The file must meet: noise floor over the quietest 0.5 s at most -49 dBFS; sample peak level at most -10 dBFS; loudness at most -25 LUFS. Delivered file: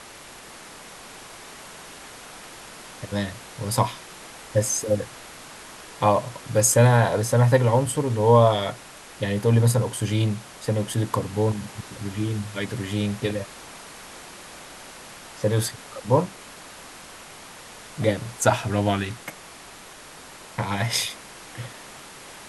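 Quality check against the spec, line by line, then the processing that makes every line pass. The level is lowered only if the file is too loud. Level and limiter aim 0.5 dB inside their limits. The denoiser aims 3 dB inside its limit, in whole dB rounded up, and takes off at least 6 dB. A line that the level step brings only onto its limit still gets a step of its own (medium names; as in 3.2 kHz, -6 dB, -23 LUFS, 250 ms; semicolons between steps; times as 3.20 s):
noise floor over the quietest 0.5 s -44 dBFS: fail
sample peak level -5.0 dBFS: fail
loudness -23.5 LUFS: fail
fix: noise reduction 6 dB, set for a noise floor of -44 dBFS; trim -2 dB; peak limiter -10.5 dBFS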